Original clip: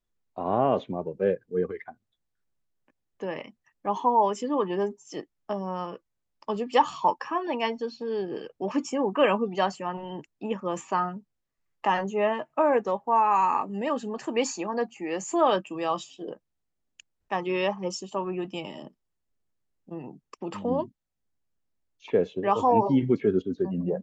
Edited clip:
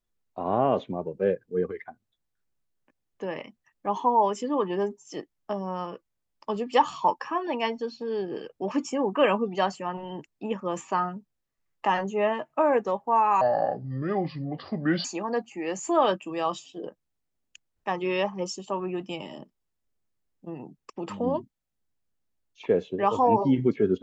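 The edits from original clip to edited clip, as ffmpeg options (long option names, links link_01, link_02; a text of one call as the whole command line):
ffmpeg -i in.wav -filter_complex "[0:a]asplit=3[link_01][link_02][link_03];[link_01]atrim=end=13.414[link_04];[link_02]atrim=start=13.41:end=14.49,asetpts=PTS-STARTPTS,asetrate=29106,aresample=44100[link_05];[link_03]atrim=start=14.486[link_06];[link_04][link_05]acrossfade=duration=0.004:curve1=hsin:curve2=hsin[link_07];[link_07][link_06]acrossfade=duration=0.004:curve1=hsin:curve2=hsin" out.wav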